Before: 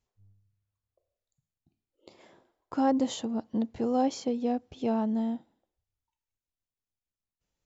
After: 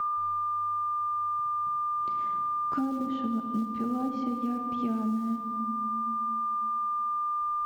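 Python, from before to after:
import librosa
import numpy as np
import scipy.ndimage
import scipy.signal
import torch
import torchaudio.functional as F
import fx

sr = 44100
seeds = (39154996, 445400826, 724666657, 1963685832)

p1 = fx.band_shelf(x, sr, hz=640.0, db=-9.0, octaves=1.7)
p2 = fx.env_lowpass_down(p1, sr, base_hz=430.0, full_db=-22.0)
p3 = p2 + 10.0 ** (-35.0 / 20.0) * np.sin(2.0 * np.pi * 1200.0 * np.arange(len(p2)) / sr)
p4 = fx.lowpass(p3, sr, hz=4000.0, slope=6)
p5 = fx.low_shelf(p4, sr, hz=77.0, db=-10.0)
p6 = fx.quant_float(p5, sr, bits=2)
p7 = p5 + (p6 * librosa.db_to_amplitude(-11.0))
p8 = fx.room_shoebox(p7, sr, seeds[0], volume_m3=2600.0, walls='mixed', distance_m=1.3)
p9 = fx.band_squash(p8, sr, depth_pct=100)
y = p9 * librosa.db_to_amplitude(-3.0)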